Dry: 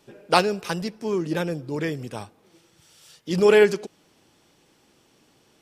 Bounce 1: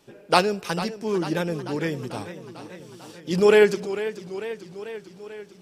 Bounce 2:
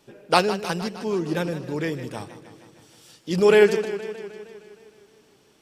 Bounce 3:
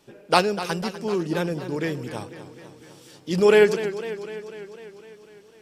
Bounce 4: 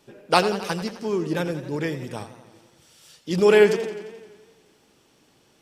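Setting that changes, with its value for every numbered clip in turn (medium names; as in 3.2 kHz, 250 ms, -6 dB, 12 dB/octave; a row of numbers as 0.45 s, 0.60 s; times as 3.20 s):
modulated delay, time: 444 ms, 155 ms, 250 ms, 87 ms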